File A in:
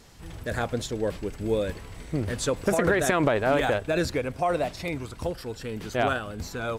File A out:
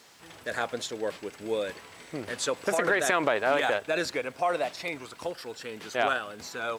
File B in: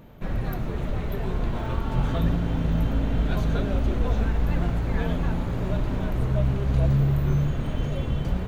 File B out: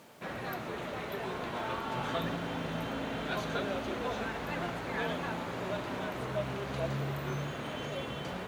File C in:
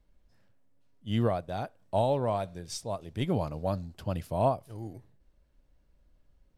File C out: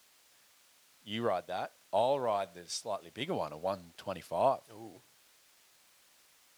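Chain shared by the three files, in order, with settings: added noise white -63 dBFS; weighting filter A; crackle 170/s -55 dBFS

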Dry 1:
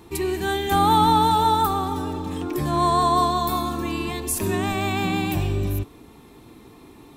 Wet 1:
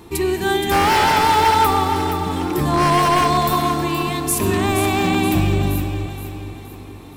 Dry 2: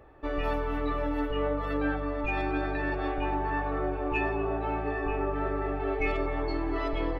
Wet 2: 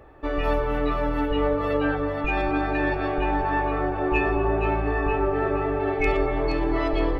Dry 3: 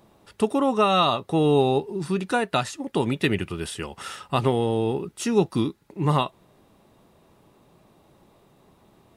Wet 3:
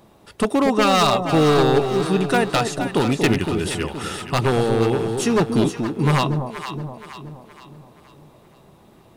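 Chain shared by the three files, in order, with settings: wavefolder -16 dBFS; echo with dull and thin repeats by turns 0.236 s, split 820 Hz, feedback 66%, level -5 dB; gain +5 dB

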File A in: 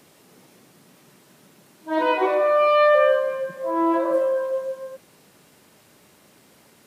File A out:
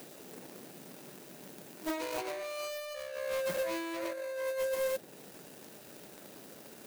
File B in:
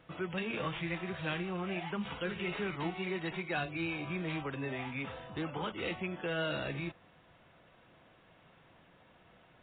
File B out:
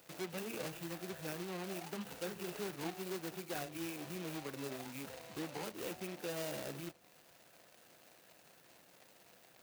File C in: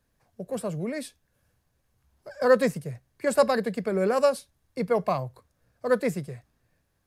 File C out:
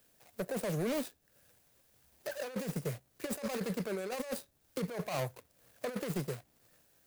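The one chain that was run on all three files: median filter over 41 samples; RIAA curve recording; negative-ratio compressor -37 dBFS, ratio -1; hard clip -29.5 dBFS; mismatched tape noise reduction encoder only; gain +1 dB

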